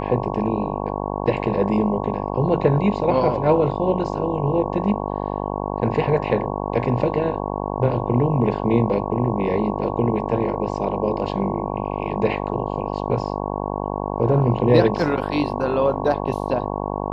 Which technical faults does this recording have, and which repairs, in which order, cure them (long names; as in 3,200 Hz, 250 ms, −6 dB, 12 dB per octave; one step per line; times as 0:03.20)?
mains buzz 50 Hz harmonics 22 −26 dBFS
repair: hum removal 50 Hz, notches 22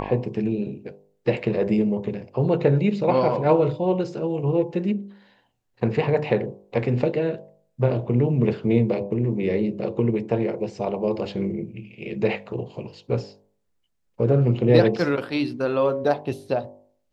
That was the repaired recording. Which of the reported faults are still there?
none of them is left